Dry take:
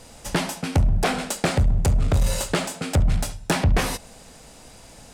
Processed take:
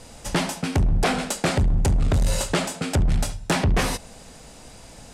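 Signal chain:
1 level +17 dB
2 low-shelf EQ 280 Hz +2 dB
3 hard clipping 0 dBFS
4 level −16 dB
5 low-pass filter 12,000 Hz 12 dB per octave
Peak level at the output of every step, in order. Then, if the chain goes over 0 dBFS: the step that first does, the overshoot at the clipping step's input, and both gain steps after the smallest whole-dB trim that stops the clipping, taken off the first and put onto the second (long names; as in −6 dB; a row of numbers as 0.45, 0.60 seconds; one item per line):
+7.5, +8.5, 0.0, −16.0, −15.0 dBFS
step 1, 8.5 dB
step 1 +8 dB, step 4 −7 dB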